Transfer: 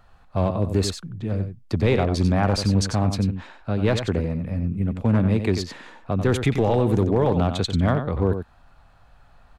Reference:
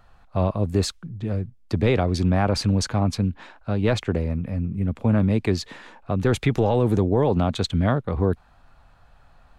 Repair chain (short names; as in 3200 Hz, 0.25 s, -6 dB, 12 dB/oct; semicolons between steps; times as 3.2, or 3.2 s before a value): clip repair -11.5 dBFS; inverse comb 92 ms -8.5 dB